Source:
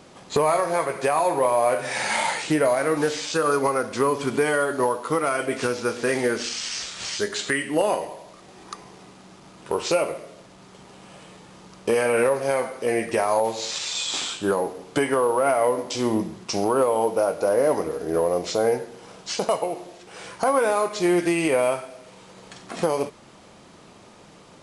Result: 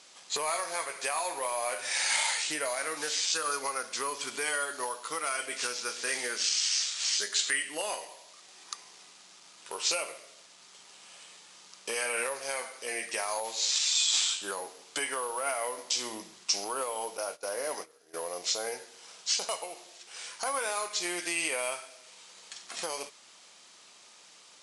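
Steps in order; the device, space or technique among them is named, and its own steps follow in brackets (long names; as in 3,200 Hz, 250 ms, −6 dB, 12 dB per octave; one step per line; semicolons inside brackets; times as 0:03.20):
piezo pickup straight into a mixer (low-pass filter 7,100 Hz 12 dB per octave; first difference)
0:17.17–0:18.14: noise gate −45 dBFS, range −17 dB
level +6.5 dB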